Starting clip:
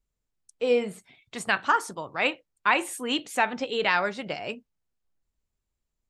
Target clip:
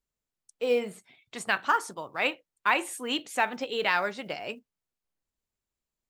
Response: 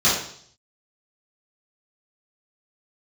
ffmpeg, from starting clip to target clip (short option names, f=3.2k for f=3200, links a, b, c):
-af "acrusher=bits=9:mode=log:mix=0:aa=0.000001,lowshelf=f=120:g=-10.5,volume=-2dB"